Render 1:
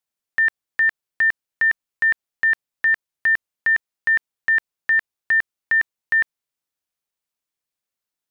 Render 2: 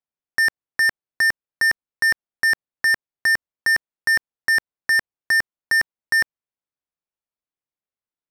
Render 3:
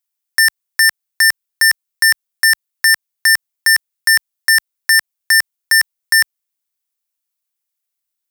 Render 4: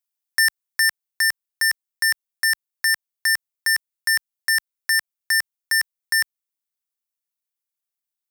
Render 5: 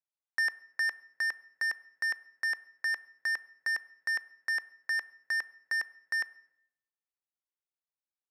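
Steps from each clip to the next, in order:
low-pass filter 1,200 Hz 6 dB per octave; leveller curve on the samples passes 3; level +2.5 dB
spectral tilt +4.5 dB per octave; level +1.5 dB
speech leveller within 5 dB 2 s; level −8 dB
resonant band-pass 670 Hz, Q 0.52; on a send at −17 dB: convolution reverb RT60 0.80 s, pre-delay 4 ms; on the sum: level −5.5 dB

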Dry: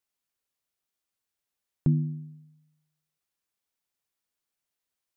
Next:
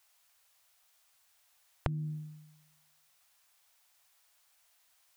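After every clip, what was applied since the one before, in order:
drawn EQ curve 110 Hz 0 dB, 220 Hz −26 dB, 680 Hz +7 dB
downward compressor 12 to 1, threshold −39 dBFS, peak gain reduction 13 dB
level +10 dB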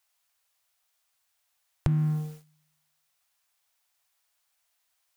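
leveller curve on the samples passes 3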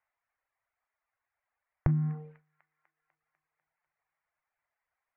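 Chebyshev low-pass filter 2,100 Hz, order 4
delay with a high-pass on its return 248 ms, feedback 64%, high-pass 1,700 Hz, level −13 dB
reverb reduction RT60 0.8 s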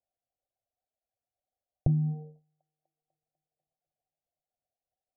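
Chebyshev low-pass with heavy ripple 770 Hz, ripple 3 dB
level +2 dB

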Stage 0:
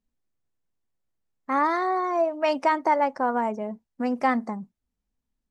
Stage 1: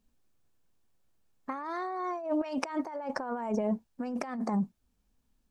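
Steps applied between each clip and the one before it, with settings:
notch filter 2,000 Hz, Q 11
compressor whose output falls as the input rises −34 dBFS, ratio −1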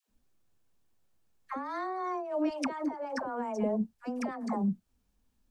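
all-pass dispersion lows, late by 94 ms, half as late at 610 Hz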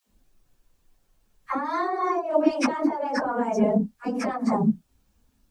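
random phases in long frames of 50 ms
level +9 dB

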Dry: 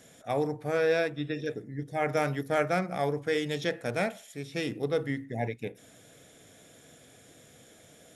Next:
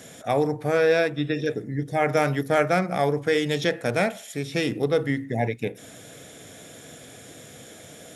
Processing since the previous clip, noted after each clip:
high-pass filter 59 Hz
in parallel at +1.5 dB: downward compressor, threshold −37 dBFS, peak gain reduction 15 dB
on the sum: level +4 dB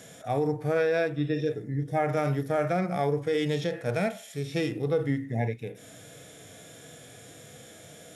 parametric band 250 Hz −3.5 dB 0.25 octaves
harmonic and percussive parts rebalanced percussive −14 dB
brickwall limiter −17 dBFS, peak gain reduction 7.5 dB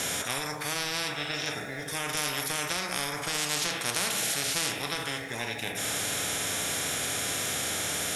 convolution reverb, pre-delay 3 ms, DRR 7 dB
every bin compressed towards the loudest bin 10 to 1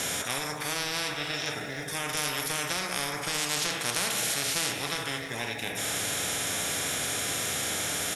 single-tap delay 305 ms −12 dB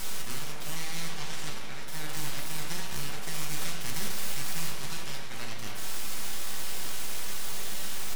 flanger 1.5 Hz, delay 4.7 ms, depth 7.6 ms, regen +56%
full-wave rectification
rectangular room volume 300 cubic metres, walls furnished, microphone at 1.1 metres

